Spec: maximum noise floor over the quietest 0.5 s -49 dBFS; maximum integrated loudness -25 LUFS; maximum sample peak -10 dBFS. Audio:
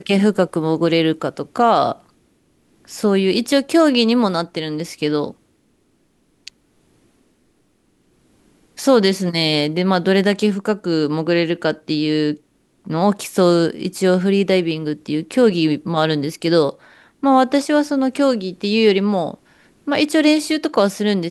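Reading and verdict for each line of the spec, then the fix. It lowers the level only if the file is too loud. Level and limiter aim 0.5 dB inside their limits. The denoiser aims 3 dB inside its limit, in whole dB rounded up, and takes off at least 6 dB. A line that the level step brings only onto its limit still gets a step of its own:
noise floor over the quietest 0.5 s -61 dBFS: OK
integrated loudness -17.5 LUFS: fail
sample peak -2.5 dBFS: fail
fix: gain -8 dB

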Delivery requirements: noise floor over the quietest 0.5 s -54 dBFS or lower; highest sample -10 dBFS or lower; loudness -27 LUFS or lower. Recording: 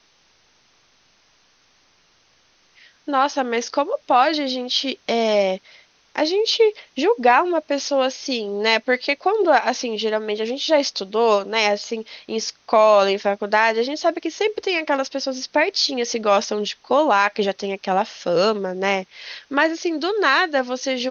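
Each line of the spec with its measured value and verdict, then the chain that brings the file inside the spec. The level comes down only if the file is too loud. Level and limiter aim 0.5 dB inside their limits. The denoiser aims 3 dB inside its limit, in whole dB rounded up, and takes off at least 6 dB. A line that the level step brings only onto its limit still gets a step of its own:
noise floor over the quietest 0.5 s -59 dBFS: OK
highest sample -3.5 dBFS: fail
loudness -20.0 LUFS: fail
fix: gain -7.5 dB

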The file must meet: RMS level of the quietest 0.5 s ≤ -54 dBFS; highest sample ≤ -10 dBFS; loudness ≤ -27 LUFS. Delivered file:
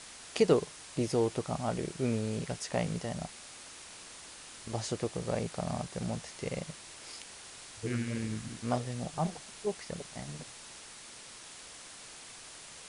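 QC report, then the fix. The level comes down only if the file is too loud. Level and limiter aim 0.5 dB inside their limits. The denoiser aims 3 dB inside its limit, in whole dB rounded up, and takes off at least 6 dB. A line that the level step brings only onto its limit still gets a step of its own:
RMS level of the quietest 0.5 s -50 dBFS: fail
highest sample -11.5 dBFS: OK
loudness -35.0 LUFS: OK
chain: denoiser 7 dB, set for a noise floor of -50 dBFS

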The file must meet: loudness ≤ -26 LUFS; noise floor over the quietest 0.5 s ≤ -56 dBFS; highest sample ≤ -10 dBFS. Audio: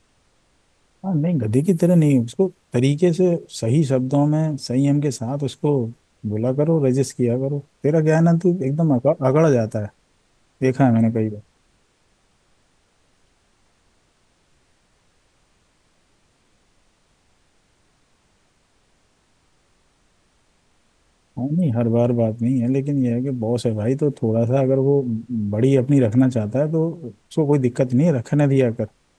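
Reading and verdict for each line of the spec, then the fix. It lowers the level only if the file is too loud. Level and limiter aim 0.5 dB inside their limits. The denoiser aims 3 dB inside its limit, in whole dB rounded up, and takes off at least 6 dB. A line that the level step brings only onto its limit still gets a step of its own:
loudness -19.5 LUFS: fail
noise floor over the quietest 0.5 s -62 dBFS: OK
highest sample -5.0 dBFS: fail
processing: gain -7 dB

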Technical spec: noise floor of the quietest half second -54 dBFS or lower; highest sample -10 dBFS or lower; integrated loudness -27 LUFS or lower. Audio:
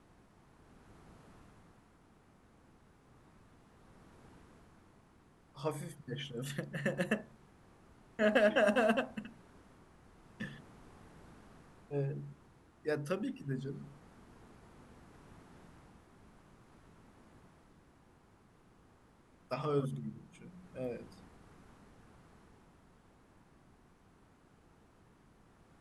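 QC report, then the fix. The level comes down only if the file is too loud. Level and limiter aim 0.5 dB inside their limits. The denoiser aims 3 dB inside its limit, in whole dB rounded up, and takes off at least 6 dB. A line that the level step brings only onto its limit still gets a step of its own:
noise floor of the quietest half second -65 dBFS: OK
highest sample -17.0 dBFS: OK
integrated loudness -36.5 LUFS: OK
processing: none

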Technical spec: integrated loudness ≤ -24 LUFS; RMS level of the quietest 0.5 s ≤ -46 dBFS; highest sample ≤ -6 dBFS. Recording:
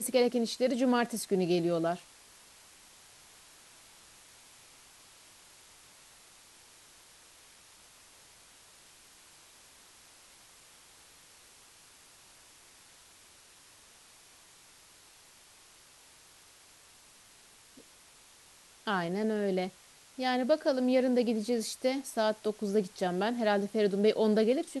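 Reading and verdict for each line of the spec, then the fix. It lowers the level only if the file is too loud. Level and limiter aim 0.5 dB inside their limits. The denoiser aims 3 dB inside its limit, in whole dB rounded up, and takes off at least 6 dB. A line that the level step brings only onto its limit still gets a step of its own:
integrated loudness -30.0 LUFS: OK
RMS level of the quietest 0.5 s -58 dBFS: OK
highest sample -15.0 dBFS: OK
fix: none

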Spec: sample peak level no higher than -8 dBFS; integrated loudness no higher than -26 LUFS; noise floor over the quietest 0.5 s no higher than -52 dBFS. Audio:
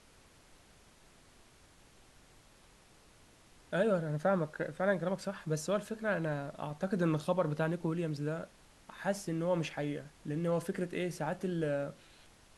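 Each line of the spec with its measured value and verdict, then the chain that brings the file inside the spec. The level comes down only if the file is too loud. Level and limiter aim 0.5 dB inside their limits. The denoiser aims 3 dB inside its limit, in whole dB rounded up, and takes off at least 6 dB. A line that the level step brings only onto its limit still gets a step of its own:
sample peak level -18.0 dBFS: OK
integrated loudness -35.0 LUFS: OK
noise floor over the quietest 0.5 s -61 dBFS: OK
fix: none

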